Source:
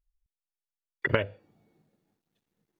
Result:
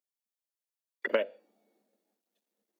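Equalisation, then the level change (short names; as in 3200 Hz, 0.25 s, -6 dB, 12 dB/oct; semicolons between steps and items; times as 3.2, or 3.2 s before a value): elliptic high-pass 210 Hz, stop band 40 dB; bell 590 Hz +9 dB 0.68 oct; high shelf 3400 Hz +10 dB; -7.0 dB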